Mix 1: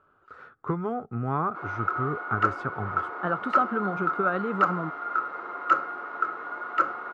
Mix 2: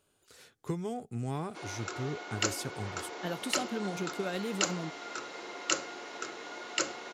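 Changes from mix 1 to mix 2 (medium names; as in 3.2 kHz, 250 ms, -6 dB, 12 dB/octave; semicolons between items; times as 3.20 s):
speech -5.0 dB; master: remove resonant low-pass 1.3 kHz, resonance Q 9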